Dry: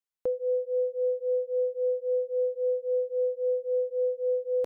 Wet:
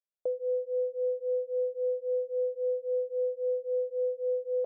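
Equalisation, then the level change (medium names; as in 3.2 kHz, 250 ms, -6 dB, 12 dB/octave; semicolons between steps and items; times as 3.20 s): resonant low-pass 610 Hz, resonance Q 4.9; tilt EQ +4.5 dB/octave; -7.0 dB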